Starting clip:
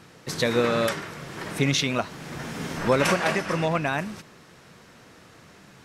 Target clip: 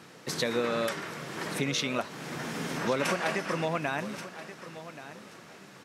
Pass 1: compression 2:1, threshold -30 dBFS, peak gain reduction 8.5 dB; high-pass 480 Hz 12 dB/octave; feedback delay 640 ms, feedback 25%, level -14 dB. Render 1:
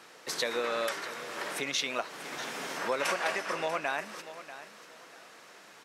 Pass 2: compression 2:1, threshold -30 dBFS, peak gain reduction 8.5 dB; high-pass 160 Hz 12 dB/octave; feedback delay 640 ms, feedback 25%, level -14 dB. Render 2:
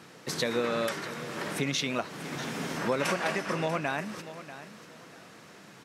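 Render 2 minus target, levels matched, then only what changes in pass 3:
echo 489 ms early
change: feedback delay 1129 ms, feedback 25%, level -14 dB

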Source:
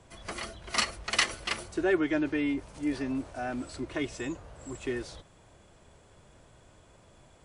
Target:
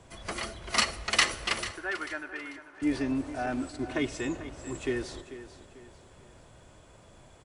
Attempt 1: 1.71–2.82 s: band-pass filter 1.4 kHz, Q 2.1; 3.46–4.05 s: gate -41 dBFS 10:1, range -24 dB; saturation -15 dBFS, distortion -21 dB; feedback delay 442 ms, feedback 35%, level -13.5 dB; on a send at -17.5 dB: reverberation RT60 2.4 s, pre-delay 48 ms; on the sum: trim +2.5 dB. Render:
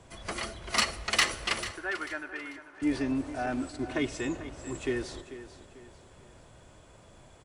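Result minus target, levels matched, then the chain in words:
saturation: distortion +13 dB
1.71–2.82 s: band-pass filter 1.4 kHz, Q 2.1; 3.46–4.05 s: gate -41 dBFS 10:1, range -24 dB; saturation -7 dBFS, distortion -34 dB; feedback delay 442 ms, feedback 35%, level -13.5 dB; on a send at -17.5 dB: reverberation RT60 2.4 s, pre-delay 48 ms; on the sum: trim +2.5 dB

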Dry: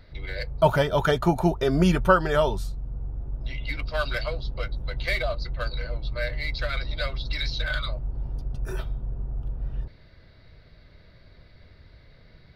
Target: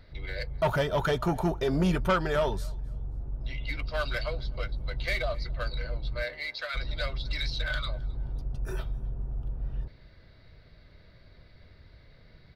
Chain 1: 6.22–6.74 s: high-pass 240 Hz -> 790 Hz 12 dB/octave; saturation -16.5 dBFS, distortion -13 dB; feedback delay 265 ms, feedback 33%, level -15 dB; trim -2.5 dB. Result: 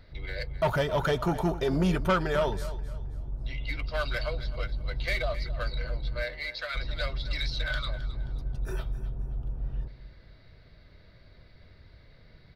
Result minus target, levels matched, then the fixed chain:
echo-to-direct +10.5 dB
6.22–6.74 s: high-pass 240 Hz -> 790 Hz 12 dB/octave; saturation -16.5 dBFS, distortion -13 dB; feedback delay 265 ms, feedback 33%, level -25.5 dB; trim -2.5 dB

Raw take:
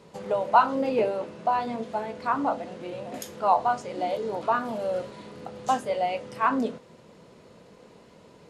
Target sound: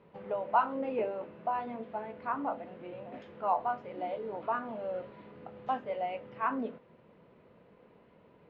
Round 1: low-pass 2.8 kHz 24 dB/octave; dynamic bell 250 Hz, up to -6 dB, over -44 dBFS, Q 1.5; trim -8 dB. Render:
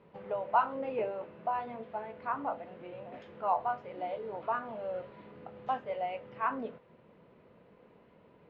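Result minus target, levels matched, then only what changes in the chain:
250 Hz band -4.0 dB
change: dynamic bell 110 Hz, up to -6 dB, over -44 dBFS, Q 1.5

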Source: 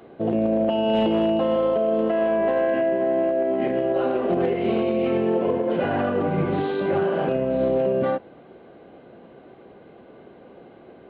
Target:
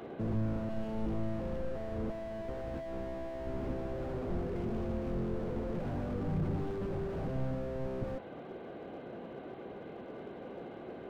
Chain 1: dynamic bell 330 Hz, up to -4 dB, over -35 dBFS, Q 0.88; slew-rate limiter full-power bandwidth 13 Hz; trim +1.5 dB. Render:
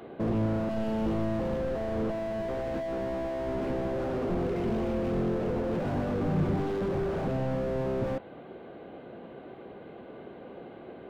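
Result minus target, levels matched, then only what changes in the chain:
slew-rate limiter: distortion -9 dB
change: slew-rate limiter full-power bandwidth 5 Hz

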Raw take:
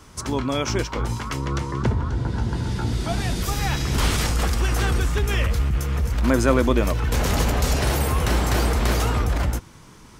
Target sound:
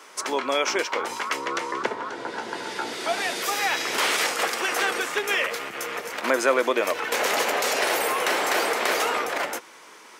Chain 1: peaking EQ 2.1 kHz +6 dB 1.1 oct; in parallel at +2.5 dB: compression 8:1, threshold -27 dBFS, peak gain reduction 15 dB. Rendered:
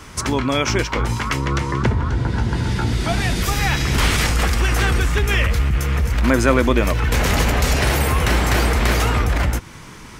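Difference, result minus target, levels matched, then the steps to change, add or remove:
500 Hz band -3.5 dB
add first: ladder high-pass 360 Hz, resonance 25%

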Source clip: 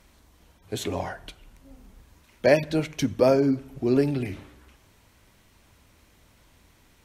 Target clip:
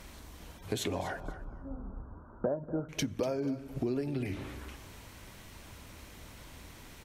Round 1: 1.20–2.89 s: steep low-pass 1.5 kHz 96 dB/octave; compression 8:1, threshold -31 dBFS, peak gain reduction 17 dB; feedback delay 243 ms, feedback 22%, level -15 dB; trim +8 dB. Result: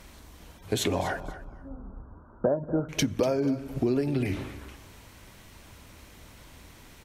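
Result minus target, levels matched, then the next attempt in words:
compression: peak gain reduction -7 dB
1.20–2.89 s: steep low-pass 1.5 kHz 96 dB/octave; compression 8:1, threshold -39 dBFS, peak gain reduction 24 dB; feedback delay 243 ms, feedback 22%, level -15 dB; trim +8 dB

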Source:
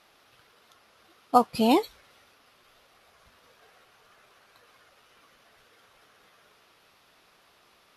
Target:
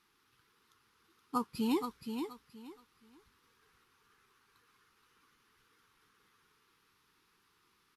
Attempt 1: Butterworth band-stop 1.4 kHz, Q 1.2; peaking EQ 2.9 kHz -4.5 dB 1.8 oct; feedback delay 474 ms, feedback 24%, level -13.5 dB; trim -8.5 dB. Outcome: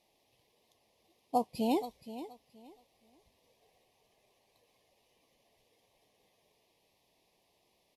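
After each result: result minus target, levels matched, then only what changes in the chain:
echo-to-direct -6.5 dB; 500 Hz band +2.0 dB
change: feedback delay 474 ms, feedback 24%, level -7 dB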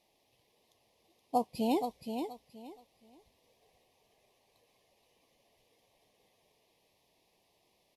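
500 Hz band +2.5 dB
change: Butterworth band-stop 630 Hz, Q 1.2

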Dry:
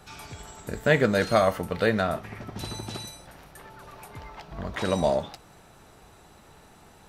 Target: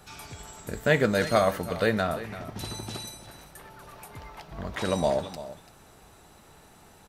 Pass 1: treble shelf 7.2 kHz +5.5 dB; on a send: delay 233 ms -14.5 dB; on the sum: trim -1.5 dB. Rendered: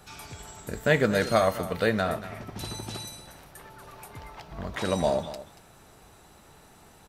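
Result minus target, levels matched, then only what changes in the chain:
echo 106 ms early
change: delay 339 ms -14.5 dB

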